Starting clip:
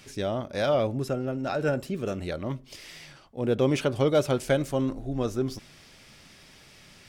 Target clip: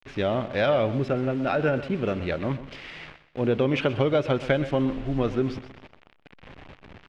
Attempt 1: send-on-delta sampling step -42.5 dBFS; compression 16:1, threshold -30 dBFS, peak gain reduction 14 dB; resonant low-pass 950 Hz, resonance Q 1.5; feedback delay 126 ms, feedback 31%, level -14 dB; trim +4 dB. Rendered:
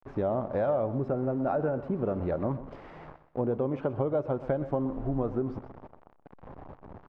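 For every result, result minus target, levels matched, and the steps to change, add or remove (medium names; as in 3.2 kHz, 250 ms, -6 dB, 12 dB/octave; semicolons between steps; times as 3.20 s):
2 kHz band -10.5 dB; compression: peak gain reduction +7.5 dB
change: resonant low-pass 2.7 kHz, resonance Q 1.5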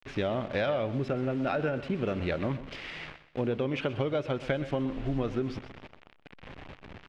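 compression: peak gain reduction +7.5 dB
change: compression 16:1, threshold -22 dBFS, peak gain reduction 6.5 dB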